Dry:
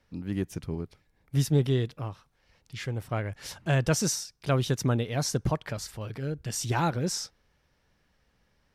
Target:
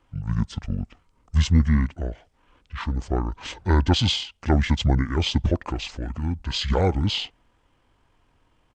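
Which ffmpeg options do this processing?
-af "acontrast=65,asetrate=24750,aresample=44100,atempo=1.7818"

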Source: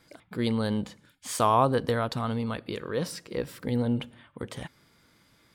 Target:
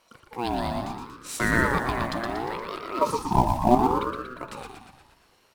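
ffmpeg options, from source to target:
-filter_complex "[0:a]asettb=1/sr,asplit=3[a][b][c];[a]atrim=end=3.014[d];[b]atrim=start=3.01:end=3.75,asetpts=PTS-STARTPTS,afade=t=in:d=0.004:c=qsin,afade=t=out:st=0.736:d=0.004:c=qsin,lowshelf=f=530:t=q:w=3:g=11.5[e];[c]atrim=start=3.746[f];[d][e]acrossfade=d=0.004:c1=hsin:c2=qsin[g];[g][f]acrossfade=d=0.004:c1=qsin:c2=hsin,bandreject=f=52.13:t=h:w=4,bandreject=f=104.26:t=h:w=4,bandreject=f=156.39:t=h:w=4,bandreject=f=208.52:t=h:w=4,bandreject=f=260.65:t=h:w=4,bandreject=f=312.78:t=h:w=4,bandreject=f=364.91:t=h:w=4,bandreject=f=417.04:t=h:w=4,bandreject=f=469.17:t=h:w=4,asplit=2[h][i];[i]acrusher=bits=4:mode=log:mix=0:aa=0.000001,volume=-4dB[j];[h][j]amix=inputs=2:normalize=0,asplit=8[k][l][m][n][o][p][q][r];[l]adelay=118,afreqshift=67,volume=-5dB[s];[m]adelay=236,afreqshift=134,volume=-10dB[t];[n]adelay=354,afreqshift=201,volume=-15.1dB[u];[o]adelay=472,afreqshift=268,volume=-20.1dB[v];[p]adelay=590,afreqshift=335,volume=-25.1dB[w];[q]adelay=708,afreqshift=402,volume=-30.2dB[x];[r]adelay=826,afreqshift=469,volume=-35.2dB[y];[k][s][t][u][v][w][x][y]amix=inputs=8:normalize=0,aeval=exprs='val(0)*sin(2*PI*640*n/s+640*0.3/0.7*sin(2*PI*0.7*n/s))':c=same,volume=-3dB"

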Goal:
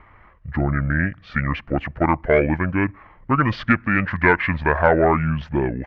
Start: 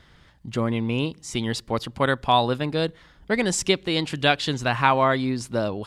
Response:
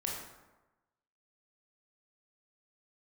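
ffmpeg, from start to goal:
-af "asetrate=26990,aresample=44100,atempo=1.63392,aeval=exprs='0.708*(cos(1*acos(clip(val(0)/0.708,-1,1)))-cos(1*PI/2))+0.1*(cos(5*acos(clip(val(0)/0.708,-1,1)))-cos(5*PI/2))':c=same,lowpass=f=1.7k:t=q:w=2.3,volume=-1dB"

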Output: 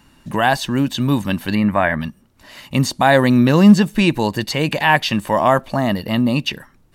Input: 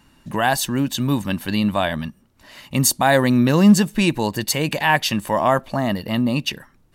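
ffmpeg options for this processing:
-filter_complex "[0:a]asettb=1/sr,asplit=3[a][b][c];[a]atrim=end=1.554[d];[b]atrim=start=1.55:end=2.01,asetpts=PTS-STARTPTS,afade=t=in:d=0.004:c=qsin,afade=t=out:st=0.456:d=0.004:c=qsin,highshelf=f=2.6k:t=q:w=3:g=-9[e];[c]atrim=start=2.006[f];[d][e]acrossfade=d=0.004:c1=hsin:c2=qsin[g];[g][f]acrossfade=d=0.004:c1=qsin:c2=hsin,acrossover=split=4900[h][i];[i]acompressor=threshold=-39dB:ratio=4:attack=1:release=60[j];[h][j]amix=inputs=2:normalize=0,volume=3dB"

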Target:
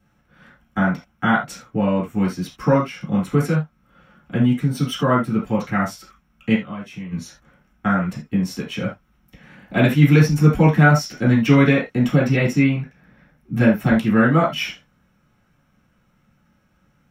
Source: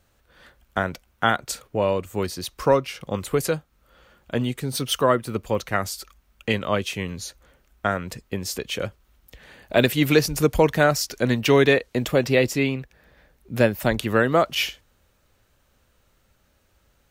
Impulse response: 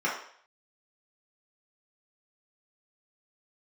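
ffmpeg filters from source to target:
-filter_complex "[0:a]lowshelf=f=270:t=q:w=1.5:g=12,asplit=3[a][b][c];[a]afade=t=out:st=6.54:d=0.02[d];[b]acompressor=threshold=-27dB:ratio=6,afade=t=in:st=6.54:d=0.02,afade=t=out:st=7.11:d=0.02[e];[c]afade=t=in:st=7.11:d=0.02[f];[d][e][f]amix=inputs=3:normalize=0[g];[1:a]atrim=start_sample=2205,atrim=end_sample=3969[h];[g][h]afir=irnorm=-1:irlink=0,volume=-9dB"

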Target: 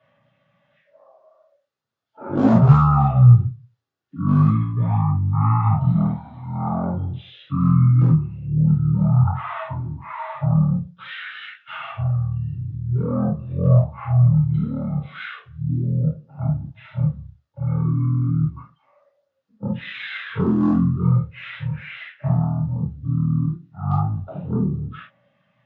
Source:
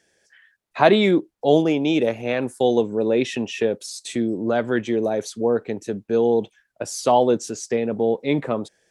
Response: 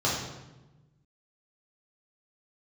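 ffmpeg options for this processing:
-filter_complex "[0:a]highpass=380,equalizer=f=4.7k:t=o:w=0.77:g=5.5,asetrate=15303,aresample=44100,aphaser=in_gain=1:out_gain=1:delay=2.8:decay=0.3:speed=0.36:type=sinusoidal,aresample=16000,asoftclip=type=hard:threshold=-10.5dB,aresample=44100[a];[1:a]atrim=start_sample=2205,atrim=end_sample=3528[b];[a][b]afir=irnorm=-1:irlink=0,volume=-13dB"

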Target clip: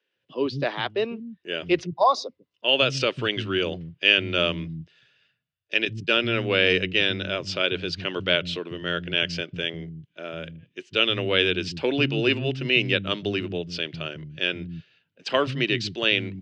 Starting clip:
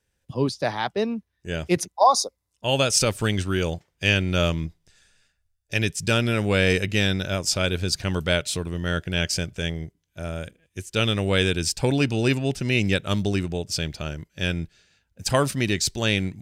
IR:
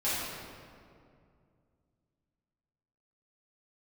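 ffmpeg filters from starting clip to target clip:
-filter_complex "[0:a]asettb=1/sr,asplit=3[a][b][c];[a]atrim=end=5.854[d];[b]atrim=start=5.85:end=7.24,asetpts=PTS-STARTPTS,afade=t=in:d=0.004:c=qsin,afade=t=out:st=1.386:d=0.004:c=qsin,agate=range=-33dB:threshold=-22dB:ratio=3:detection=peak[e];[c]atrim=start=7.236[f];[d][e]acrossfade=d=0.004:c1=hsin:c2=qsin[g];[g][f]acrossfade=d=0.004:c1=qsin:c2=hsin,highpass=f=130:w=0.5412,highpass=f=130:w=1.3066,equalizer=f=200:t=q:w=4:g=-6,equalizer=f=360:t=q:w=4:g=3,equalizer=f=820:t=q:w=4:g=-7,equalizer=f=2.9k:t=q:w=4:g=8,lowpass=f=4.1k:w=0.5412,lowpass=f=4.1k:w=1.3066,acrossover=split=220[h][i];[h]adelay=150[j];[j][i]amix=inputs=2:normalize=0"

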